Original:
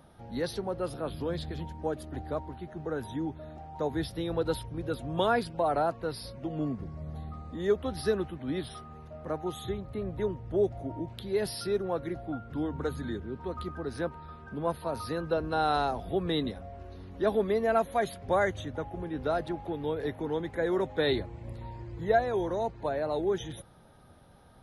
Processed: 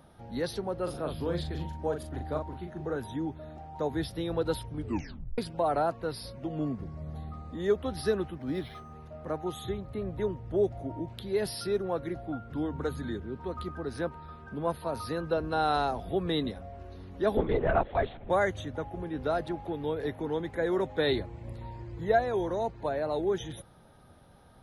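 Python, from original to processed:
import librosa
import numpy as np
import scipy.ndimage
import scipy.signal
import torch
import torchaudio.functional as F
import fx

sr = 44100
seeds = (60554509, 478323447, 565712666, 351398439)

y = fx.doubler(x, sr, ms=40.0, db=-5.5, at=(0.83, 2.96))
y = fx.resample_linear(y, sr, factor=6, at=(8.35, 8.93))
y = fx.lpc_vocoder(y, sr, seeds[0], excitation='whisper', order=10, at=(17.37, 18.3))
y = fx.edit(y, sr, fx.tape_stop(start_s=4.73, length_s=0.65), tone=tone)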